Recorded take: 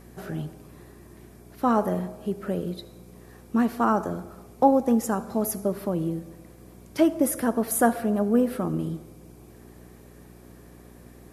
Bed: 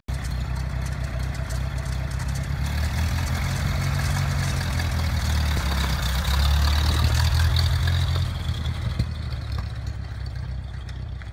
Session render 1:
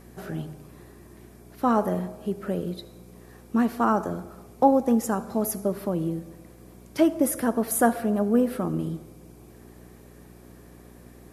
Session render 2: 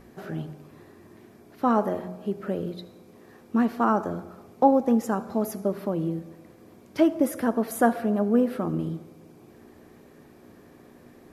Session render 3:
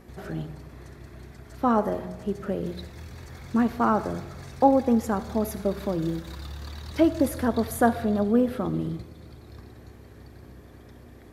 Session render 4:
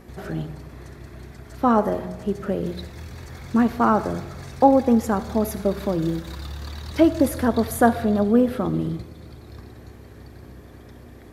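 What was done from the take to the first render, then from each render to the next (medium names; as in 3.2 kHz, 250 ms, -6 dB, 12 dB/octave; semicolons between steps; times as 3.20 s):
de-hum 50 Hz, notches 3
peaking EQ 10 kHz -10 dB 1.3 oct; hum notches 60/120/180 Hz
add bed -18 dB
trim +4 dB; peak limiter -3 dBFS, peak gain reduction 1 dB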